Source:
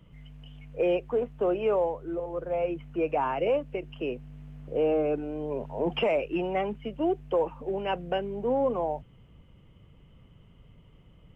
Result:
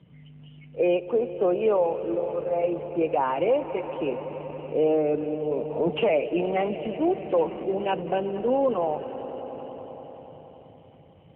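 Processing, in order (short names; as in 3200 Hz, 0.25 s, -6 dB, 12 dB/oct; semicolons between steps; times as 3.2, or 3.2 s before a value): swelling echo 94 ms, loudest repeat 5, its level -17.5 dB; gain +3.5 dB; AMR-NB 7.4 kbps 8000 Hz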